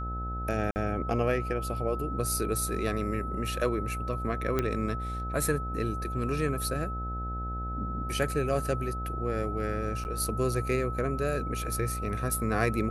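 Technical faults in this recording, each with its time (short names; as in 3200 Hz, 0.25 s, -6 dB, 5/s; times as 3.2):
buzz 60 Hz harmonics 14 -35 dBFS
tone 1300 Hz -36 dBFS
0.71–0.76 gap 49 ms
4.59 pop -14 dBFS
10.04–10.05 gap 9.6 ms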